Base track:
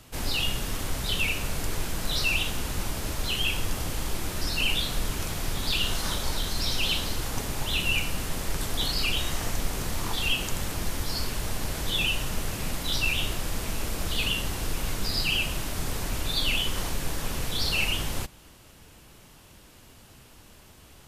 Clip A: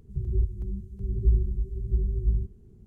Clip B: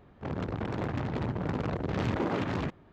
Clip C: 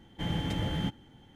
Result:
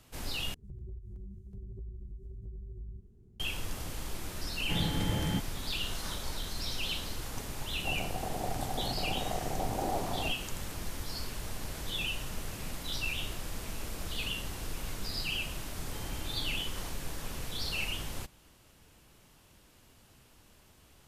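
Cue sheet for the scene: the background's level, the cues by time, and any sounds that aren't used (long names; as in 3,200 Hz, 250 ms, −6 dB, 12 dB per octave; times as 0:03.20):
base track −8.5 dB
0:00.54: overwrite with A −6.5 dB + downward compressor, threshold −34 dBFS
0:04.50: mix in C −0.5 dB
0:07.62: mix in B −9.5 dB + low-pass with resonance 750 Hz, resonance Q 7.4
0:15.74: mix in C −15 dB + comb filter 2.5 ms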